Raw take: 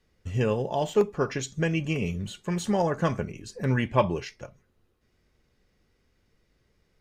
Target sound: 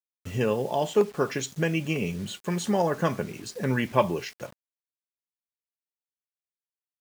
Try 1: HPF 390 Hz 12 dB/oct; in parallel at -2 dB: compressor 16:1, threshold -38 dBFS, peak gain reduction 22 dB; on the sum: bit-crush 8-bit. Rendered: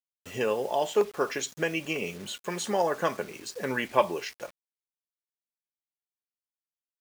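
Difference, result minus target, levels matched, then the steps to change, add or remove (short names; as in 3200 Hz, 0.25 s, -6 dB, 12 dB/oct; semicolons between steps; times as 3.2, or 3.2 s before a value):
125 Hz band -10.5 dB
change: HPF 150 Hz 12 dB/oct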